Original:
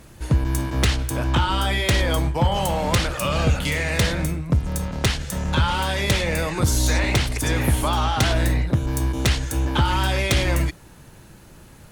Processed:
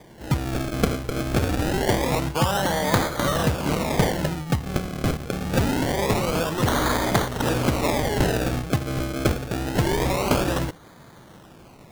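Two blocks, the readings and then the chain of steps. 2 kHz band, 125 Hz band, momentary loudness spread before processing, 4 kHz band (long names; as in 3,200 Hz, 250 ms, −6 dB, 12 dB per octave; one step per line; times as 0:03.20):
−3.5 dB, −3.5 dB, 4 LU, −5.0 dB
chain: high-pass filter 120 Hz 12 dB per octave
high-shelf EQ 4,500 Hz +6 dB
sample-and-hold swept by an LFO 32×, swing 100% 0.25 Hz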